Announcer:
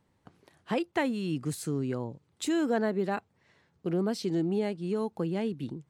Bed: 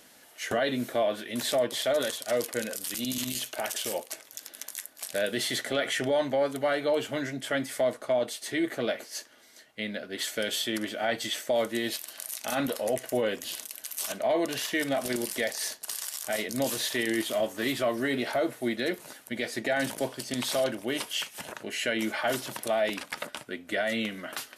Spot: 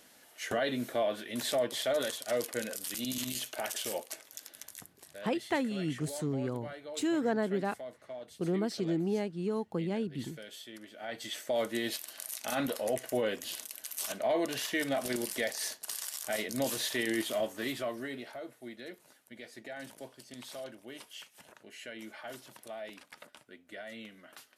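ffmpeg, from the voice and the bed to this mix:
-filter_complex "[0:a]adelay=4550,volume=-2.5dB[a];[1:a]volume=10dB,afade=t=out:st=4.34:d=0.69:silence=0.211349,afade=t=in:st=10.91:d=0.78:silence=0.199526,afade=t=out:st=17.28:d=1.04:silence=0.237137[b];[a][b]amix=inputs=2:normalize=0"

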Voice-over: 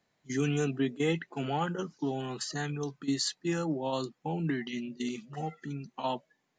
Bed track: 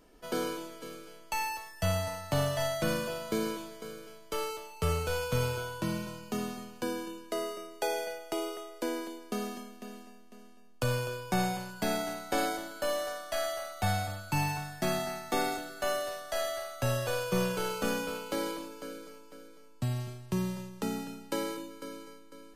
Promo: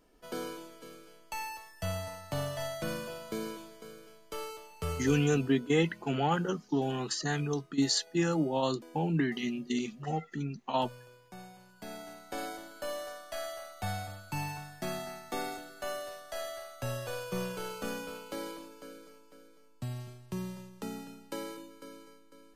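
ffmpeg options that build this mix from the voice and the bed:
-filter_complex "[0:a]adelay=4700,volume=2.5dB[a];[1:a]volume=8dB,afade=t=out:st=4.94:d=0.41:silence=0.199526,afade=t=in:st=11.53:d=1.25:silence=0.211349[b];[a][b]amix=inputs=2:normalize=0"

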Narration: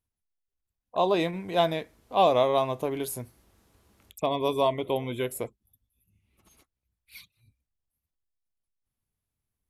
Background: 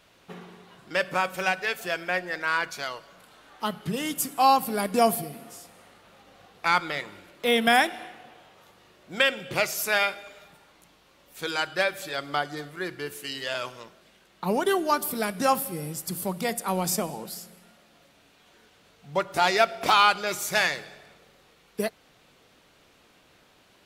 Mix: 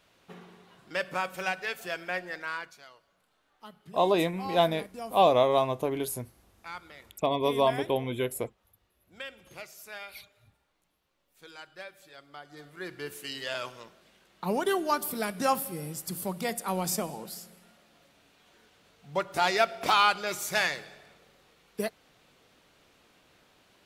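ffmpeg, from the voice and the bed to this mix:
-filter_complex "[0:a]adelay=3000,volume=0dB[a];[1:a]volume=10dB,afade=t=out:st=2.28:d=0.52:silence=0.211349,afade=t=in:st=12.42:d=0.67:silence=0.16788[b];[a][b]amix=inputs=2:normalize=0"

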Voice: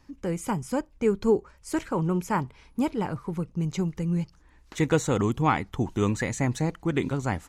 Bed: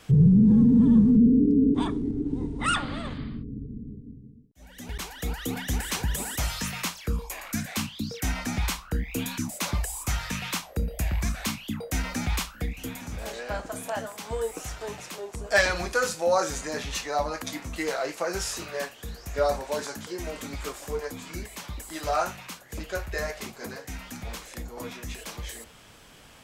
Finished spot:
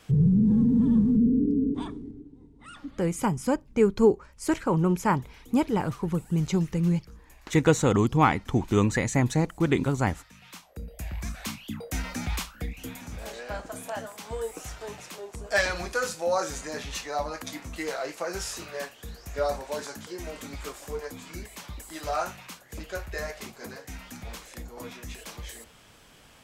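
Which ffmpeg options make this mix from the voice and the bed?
-filter_complex "[0:a]adelay=2750,volume=2.5dB[a];[1:a]volume=15dB,afade=t=out:st=1.5:d=0.82:silence=0.125893,afade=t=in:st=10.34:d=1.47:silence=0.11885[b];[a][b]amix=inputs=2:normalize=0"

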